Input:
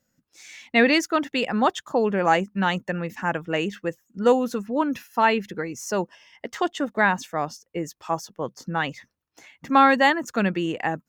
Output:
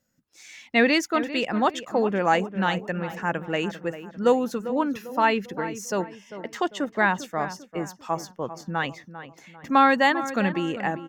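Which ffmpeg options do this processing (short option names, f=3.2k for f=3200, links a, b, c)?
-filter_complex "[0:a]asplit=2[a][b];[b]adelay=397,lowpass=f=1.9k:p=1,volume=-12dB,asplit=2[c][d];[d]adelay=397,lowpass=f=1.9k:p=1,volume=0.43,asplit=2[e][f];[f]adelay=397,lowpass=f=1.9k:p=1,volume=0.43,asplit=2[g][h];[h]adelay=397,lowpass=f=1.9k:p=1,volume=0.43[i];[a][c][e][g][i]amix=inputs=5:normalize=0,volume=-1.5dB"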